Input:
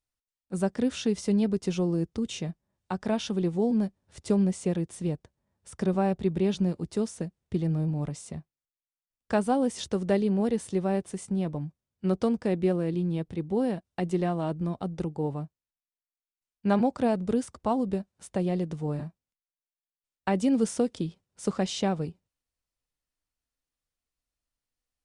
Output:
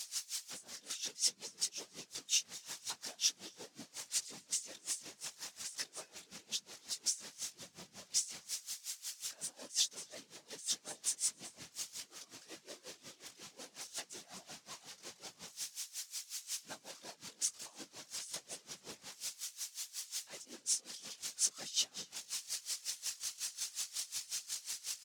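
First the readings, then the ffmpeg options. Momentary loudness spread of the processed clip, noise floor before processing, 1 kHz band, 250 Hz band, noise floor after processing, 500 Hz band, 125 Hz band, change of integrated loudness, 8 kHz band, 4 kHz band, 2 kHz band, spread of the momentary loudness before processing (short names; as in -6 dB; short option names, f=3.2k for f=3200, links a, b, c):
16 LU, under -85 dBFS, -22.5 dB, -34.5 dB, -67 dBFS, -29.0 dB, -36.0 dB, -11.0 dB, +8.5 dB, +4.0 dB, -8.0 dB, 10 LU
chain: -filter_complex "[0:a]aeval=exprs='val(0)+0.5*0.0422*sgn(val(0))':c=same,asplit=2[a][b];[b]alimiter=limit=-21.5dB:level=0:latency=1,volume=0dB[c];[a][c]amix=inputs=2:normalize=0,acompressor=threshold=-20dB:ratio=6,flanger=delay=18.5:depth=2.7:speed=0.49,afftfilt=real='hypot(re,im)*cos(2*PI*random(0))':imag='hypot(re,im)*sin(2*PI*random(1))':win_size=512:overlap=0.75,bandpass=f=6.1k:t=q:w=1.6:csg=0,asplit=2[d][e];[e]aecho=0:1:266:0.188[f];[d][f]amix=inputs=2:normalize=0,aeval=exprs='val(0)*pow(10,-21*(0.5-0.5*cos(2*PI*5.5*n/s))/20)':c=same,volume=9dB"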